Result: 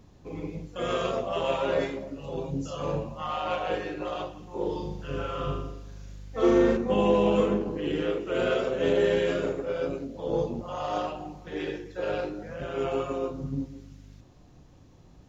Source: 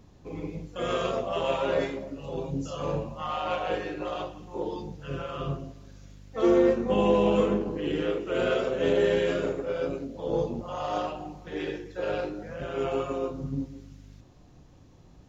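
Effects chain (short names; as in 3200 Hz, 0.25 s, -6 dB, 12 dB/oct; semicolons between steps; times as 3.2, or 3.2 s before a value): 4.56–6.77 flutter echo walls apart 6.7 m, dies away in 0.64 s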